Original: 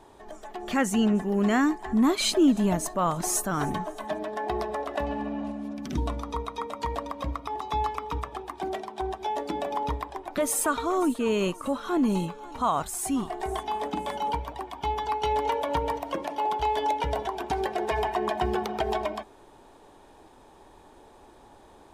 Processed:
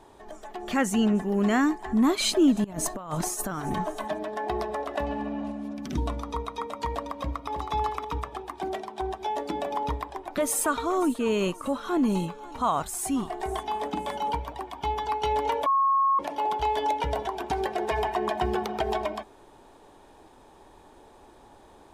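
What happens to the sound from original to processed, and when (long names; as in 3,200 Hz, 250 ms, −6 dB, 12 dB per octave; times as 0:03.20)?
0:02.64–0:04.08: compressor whose output falls as the input rises −30 dBFS, ratio −0.5
0:07.13–0:07.72: delay throw 320 ms, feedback 15%, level −7.5 dB
0:15.66–0:16.19: beep over 1,090 Hz −19 dBFS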